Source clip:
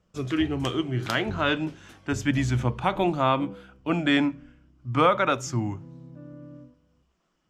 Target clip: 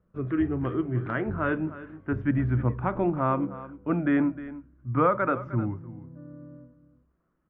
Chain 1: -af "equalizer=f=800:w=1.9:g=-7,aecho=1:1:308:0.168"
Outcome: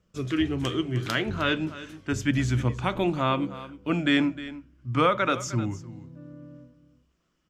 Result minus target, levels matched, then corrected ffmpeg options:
2000 Hz band +4.0 dB
-af "lowpass=f=1.6k:w=0.5412,lowpass=f=1.6k:w=1.3066,equalizer=f=800:w=1.9:g=-7,aecho=1:1:308:0.168"

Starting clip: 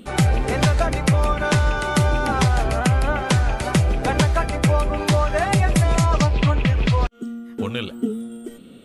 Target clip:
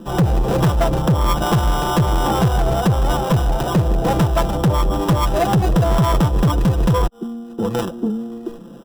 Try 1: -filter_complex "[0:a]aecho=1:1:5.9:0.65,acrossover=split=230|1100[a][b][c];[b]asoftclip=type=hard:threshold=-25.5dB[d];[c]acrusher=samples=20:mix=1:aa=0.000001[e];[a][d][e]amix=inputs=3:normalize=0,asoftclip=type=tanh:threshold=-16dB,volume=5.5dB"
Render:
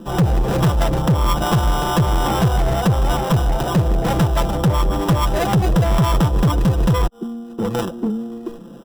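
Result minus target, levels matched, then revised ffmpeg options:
hard clip: distortion +17 dB
-filter_complex "[0:a]aecho=1:1:5.9:0.65,acrossover=split=230|1100[a][b][c];[b]asoftclip=type=hard:threshold=-14.5dB[d];[c]acrusher=samples=20:mix=1:aa=0.000001[e];[a][d][e]amix=inputs=3:normalize=0,asoftclip=type=tanh:threshold=-16dB,volume=5.5dB"

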